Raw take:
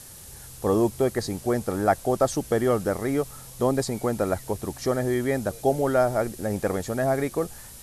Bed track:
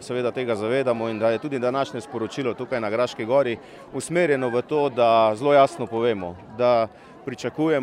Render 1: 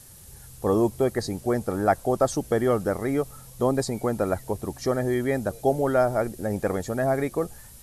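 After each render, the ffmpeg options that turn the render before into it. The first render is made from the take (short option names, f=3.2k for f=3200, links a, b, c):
-af "afftdn=nr=6:nf=-44"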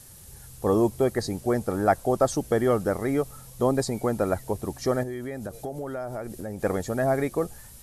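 -filter_complex "[0:a]asettb=1/sr,asplit=3[a][b][c];[a]atrim=end=5.034[d];[b]atrim=start=5.03:end=6.63,asetpts=PTS-STARTPTS,afade=t=in:d=0.004:c=qsin,afade=t=out:st=1.596:d=0.004:c=qsin,acompressor=threshold=-30dB:ratio=6:attack=3.2:release=140:knee=1:detection=peak[e];[c]atrim=start=6.626[f];[d][e]acrossfade=d=0.004:c1=hsin:c2=qsin[g];[g][f]acrossfade=d=0.004:c1=qsin:c2=hsin"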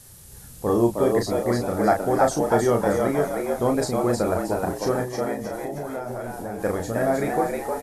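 -filter_complex "[0:a]asplit=2[a][b];[b]adelay=34,volume=-5dB[c];[a][c]amix=inputs=2:normalize=0,asplit=6[d][e][f][g][h][i];[e]adelay=313,afreqshift=91,volume=-3.5dB[j];[f]adelay=626,afreqshift=182,volume=-11dB[k];[g]adelay=939,afreqshift=273,volume=-18.6dB[l];[h]adelay=1252,afreqshift=364,volume=-26.1dB[m];[i]adelay=1565,afreqshift=455,volume=-33.6dB[n];[d][j][k][l][m][n]amix=inputs=6:normalize=0"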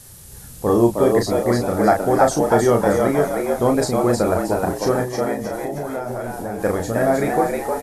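-af "volume=4.5dB,alimiter=limit=-3dB:level=0:latency=1"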